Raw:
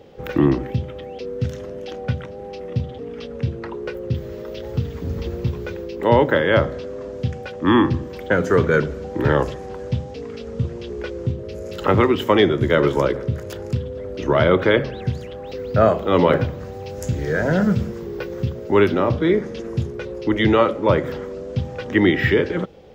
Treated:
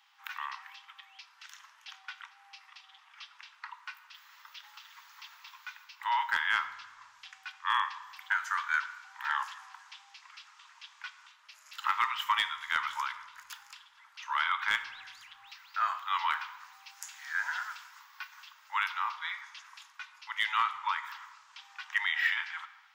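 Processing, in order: steep high-pass 910 Hz 72 dB/oct; hard clip -12 dBFS, distortion -26 dB; on a send: reverb RT60 1.3 s, pre-delay 4 ms, DRR 11 dB; on the sum: gain -6 dB

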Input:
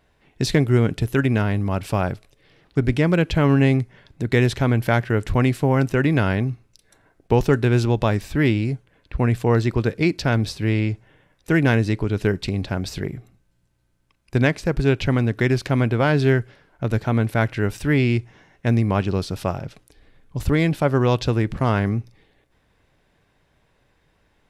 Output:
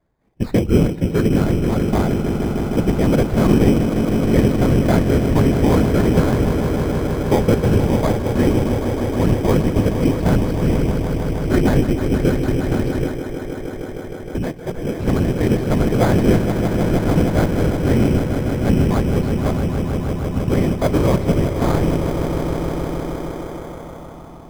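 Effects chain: tracing distortion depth 0.2 ms; running mean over 14 samples; whisperiser; on a send: swelling echo 0.156 s, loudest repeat 5, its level -10 dB; 13.08–14.95 on the sum: compressor 3:1, threshold -22 dBFS, peak gain reduction 8 dB; in parallel at -4 dB: sample-and-hold 16×; on the sum: spectral noise reduction 7 dB; gain -2.5 dB

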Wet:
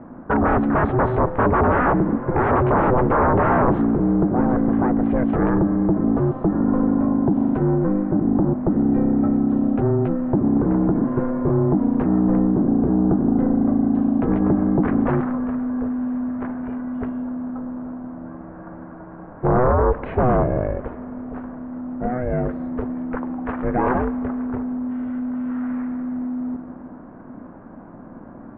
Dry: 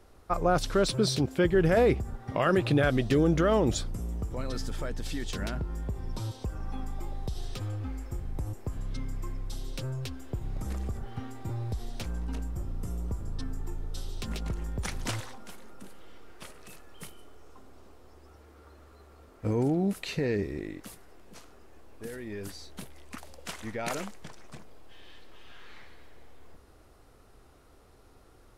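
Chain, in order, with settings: ring modulator 250 Hz; sine folder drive 14 dB, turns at -13.5 dBFS; inverse Chebyshev low-pass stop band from 4800 Hz, stop band 60 dB; Schroeder reverb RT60 3.5 s, combs from 31 ms, DRR 15.5 dB; gain +1.5 dB

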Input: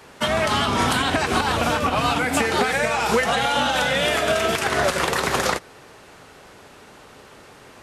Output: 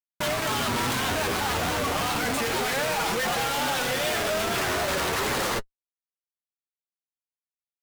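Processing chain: Schmitt trigger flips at -33 dBFS; flange 0.31 Hz, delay 5.5 ms, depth 5.7 ms, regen -30%; vibrato 2.5 Hz 46 cents

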